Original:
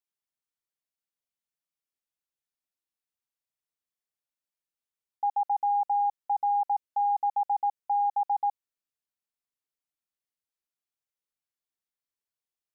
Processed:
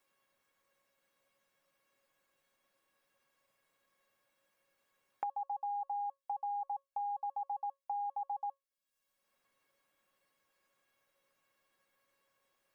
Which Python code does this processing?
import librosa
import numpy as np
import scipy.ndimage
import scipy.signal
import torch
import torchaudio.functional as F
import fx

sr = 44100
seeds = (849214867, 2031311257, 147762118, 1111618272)

y = fx.comb_fb(x, sr, f0_hz=550.0, decay_s=0.17, harmonics='all', damping=0.0, mix_pct=90)
y = fx.band_squash(y, sr, depth_pct=100)
y = y * librosa.db_to_amplitude(5.5)